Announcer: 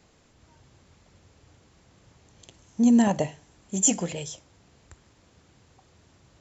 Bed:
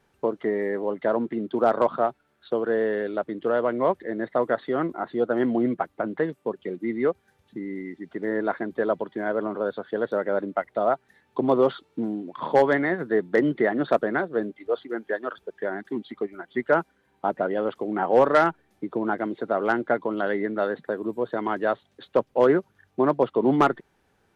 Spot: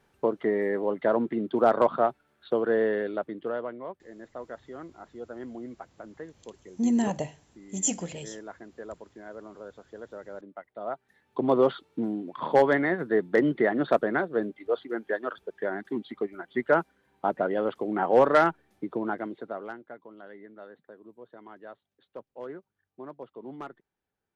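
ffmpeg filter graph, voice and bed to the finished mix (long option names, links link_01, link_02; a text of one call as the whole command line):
ffmpeg -i stem1.wav -i stem2.wav -filter_complex "[0:a]adelay=4000,volume=-5.5dB[link_01];[1:a]volume=14.5dB,afade=type=out:start_time=2.84:duration=0.99:silence=0.158489,afade=type=in:start_time=10.74:duration=0.84:silence=0.177828,afade=type=out:start_time=18.73:duration=1.07:silence=0.105925[link_02];[link_01][link_02]amix=inputs=2:normalize=0" out.wav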